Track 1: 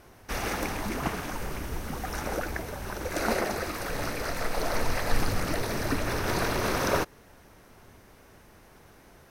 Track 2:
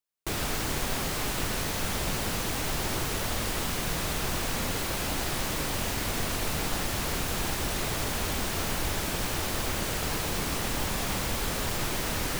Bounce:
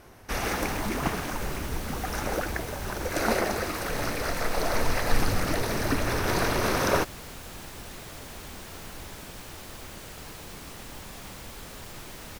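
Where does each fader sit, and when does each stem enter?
+2.0, −12.0 decibels; 0.00, 0.15 seconds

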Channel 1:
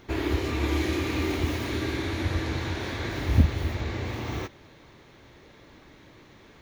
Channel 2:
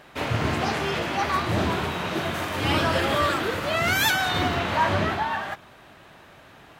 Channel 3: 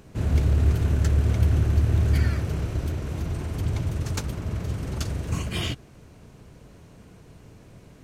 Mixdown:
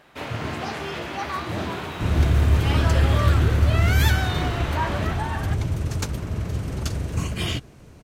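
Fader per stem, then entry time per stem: −16.0, −4.5, +2.0 decibels; 0.70, 0.00, 1.85 seconds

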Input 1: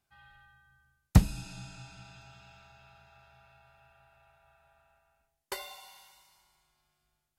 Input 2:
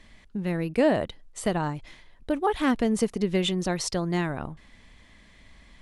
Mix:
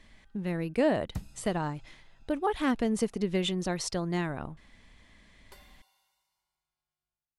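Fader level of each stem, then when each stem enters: −17.0, −4.0 decibels; 0.00, 0.00 seconds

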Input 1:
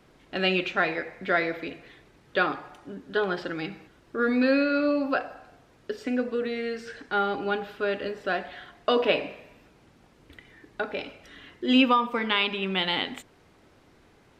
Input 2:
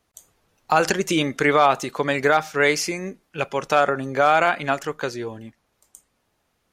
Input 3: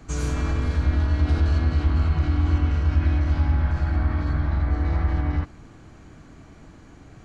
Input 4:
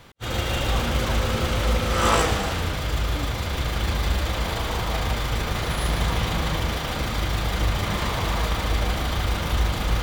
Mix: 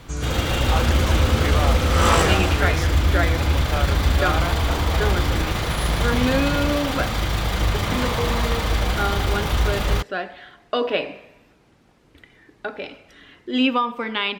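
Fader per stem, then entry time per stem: +0.5, −10.5, −1.0, +2.0 decibels; 1.85, 0.00, 0.00, 0.00 seconds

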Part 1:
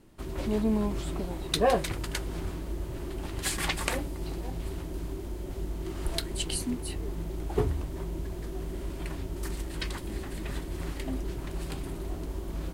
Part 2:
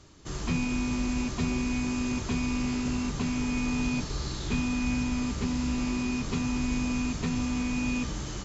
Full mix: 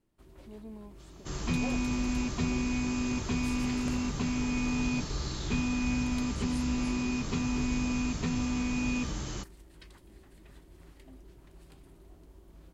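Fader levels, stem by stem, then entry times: −19.0, −1.5 decibels; 0.00, 1.00 seconds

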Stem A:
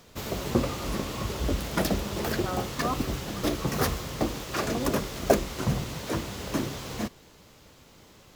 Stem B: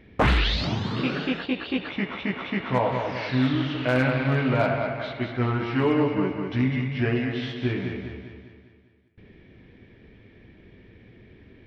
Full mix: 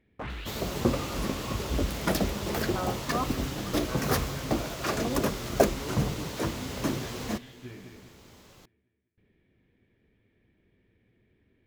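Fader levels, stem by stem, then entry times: −0.5, −17.5 decibels; 0.30, 0.00 seconds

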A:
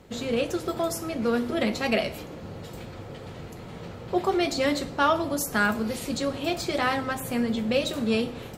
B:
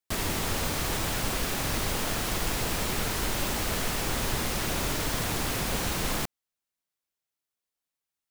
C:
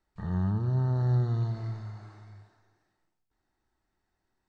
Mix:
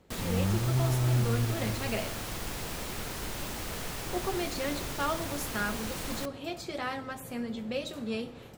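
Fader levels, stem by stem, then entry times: −9.5, −8.0, −1.0 decibels; 0.00, 0.00, 0.00 seconds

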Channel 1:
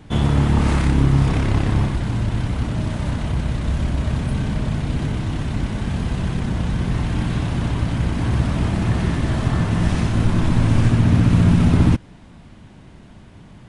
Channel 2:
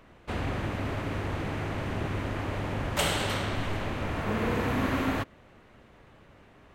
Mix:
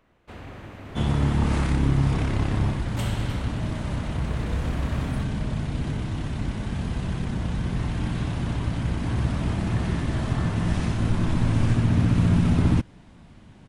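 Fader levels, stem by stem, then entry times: −5.5, −9.0 decibels; 0.85, 0.00 seconds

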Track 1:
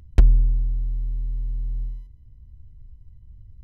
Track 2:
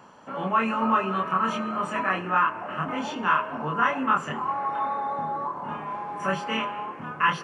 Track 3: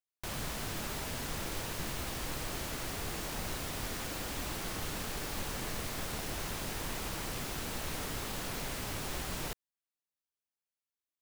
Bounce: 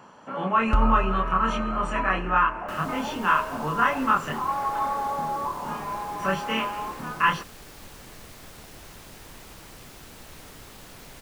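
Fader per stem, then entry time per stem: −8.0, +1.0, −7.0 decibels; 0.55, 0.00, 2.45 seconds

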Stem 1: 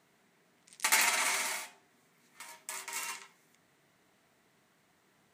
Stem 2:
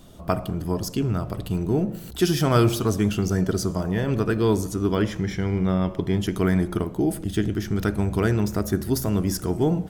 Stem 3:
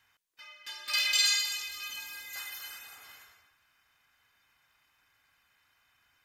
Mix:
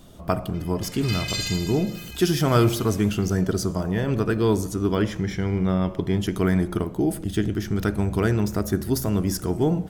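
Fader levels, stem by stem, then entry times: −18.5, 0.0, −3.5 decibels; 0.00, 0.00, 0.15 seconds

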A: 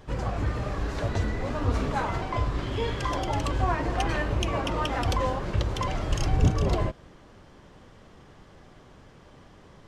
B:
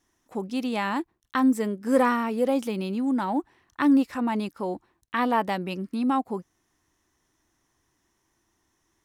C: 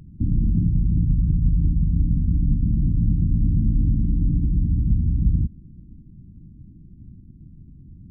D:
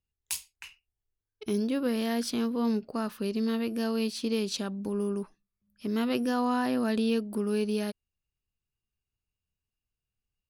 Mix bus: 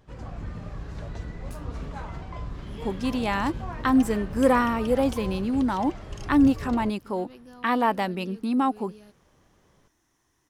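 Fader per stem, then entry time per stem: −11.0, +1.0, −19.0, −19.5 decibels; 0.00, 2.50, 0.00, 1.20 seconds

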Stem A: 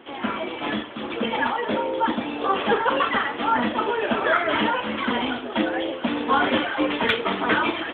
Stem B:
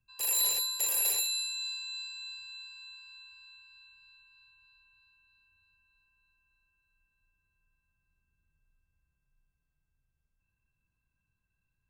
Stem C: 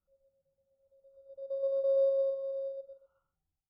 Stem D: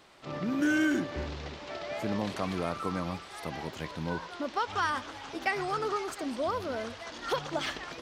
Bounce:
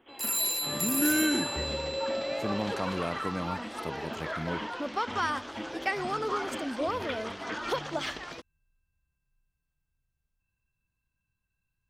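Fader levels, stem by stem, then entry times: −16.0, −0.5, −6.0, 0.0 decibels; 0.00, 0.00, 0.10, 0.40 seconds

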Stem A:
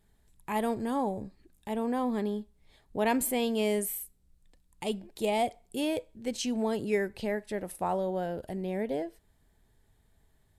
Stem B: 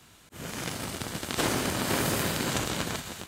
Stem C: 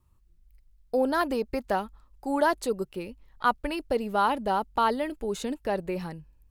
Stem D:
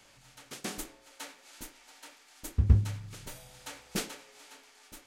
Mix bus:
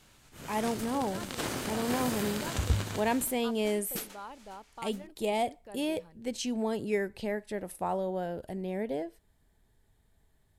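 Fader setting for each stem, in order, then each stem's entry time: −1.5, −7.0, −20.0, −6.5 decibels; 0.00, 0.00, 0.00, 0.00 seconds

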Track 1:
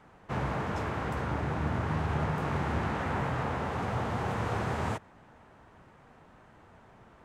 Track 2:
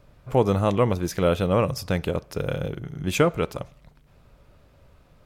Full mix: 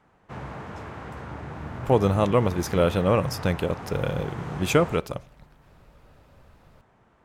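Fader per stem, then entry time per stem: −5.0, 0.0 decibels; 0.00, 1.55 seconds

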